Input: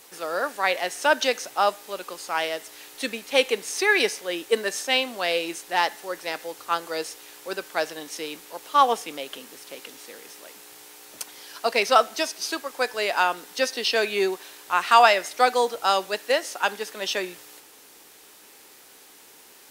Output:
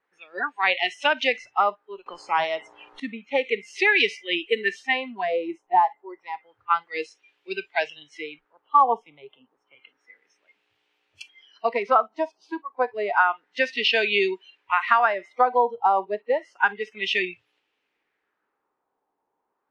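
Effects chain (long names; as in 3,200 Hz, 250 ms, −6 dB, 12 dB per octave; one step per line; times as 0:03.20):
noise reduction from a noise print of the clip's start 27 dB
downward compressor 6 to 1, threshold −21 dBFS, peak gain reduction 11 dB
auto-filter low-pass sine 0.3 Hz 900–2,900 Hz
0:02.06–0:03.00: every bin compressed towards the loudest bin 2 to 1
level +2 dB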